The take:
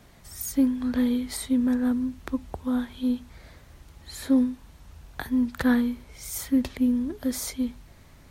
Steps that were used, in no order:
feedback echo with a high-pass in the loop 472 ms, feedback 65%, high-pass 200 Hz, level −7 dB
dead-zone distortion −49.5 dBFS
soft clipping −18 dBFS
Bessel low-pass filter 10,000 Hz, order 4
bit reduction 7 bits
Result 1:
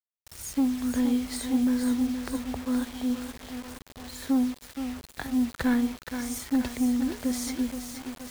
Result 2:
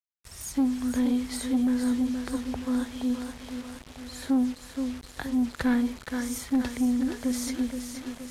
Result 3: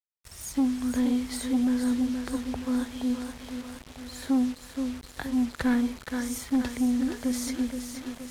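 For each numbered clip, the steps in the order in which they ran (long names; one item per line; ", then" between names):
Bessel low-pass filter, then soft clipping, then feedback echo with a high-pass in the loop, then dead-zone distortion, then bit reduction
feedback echo with a high-pass in the loop, then bit reduction, then dead-zone distortion, then Bessel low-pass filter, then soft clipping
feedback echo with a high-pass in the loop, then soft clipping, then bit reduction, then Bessel low-pass filter, then dead-zone distortion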